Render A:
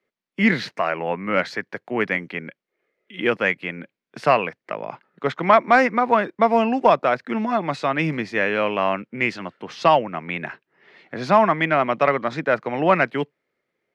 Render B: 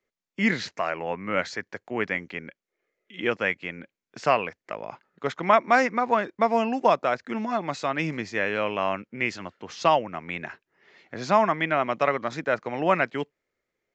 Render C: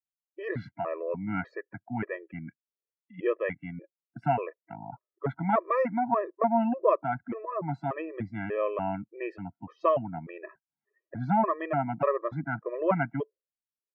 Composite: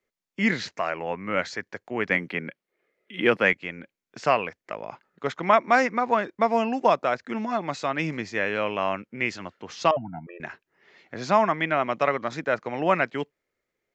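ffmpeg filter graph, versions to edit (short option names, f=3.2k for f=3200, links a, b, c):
-filter_complex "[1:a]asplit=3[a][b][c];[a]atrim=end=2.102[d];[0:a]atrim=start=2.098:end=3.532[e];[b]atrim=start=3.528:end=9.912[f];[2:a]atrim=start=9.908:end=10.402[g];[c]atrim=start=10.398[h];[d][e]acrossfade=d=0.004:c1=hsin:c2=hsin[i];[i][f]acrossfade=d=0.004:c1=hsin:c2=hsin[j];[j][g]acrossfade=d=0.004:c1=hsin:c2=hsin[k];[k][h]acrossfade=d=0.004:c1=hsin:c2=hsin"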